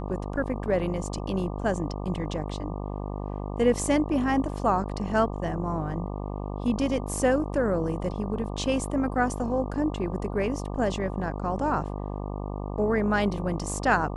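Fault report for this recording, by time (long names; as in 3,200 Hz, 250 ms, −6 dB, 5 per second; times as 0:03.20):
mains buzz 50 Hz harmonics 24 −33 dBFS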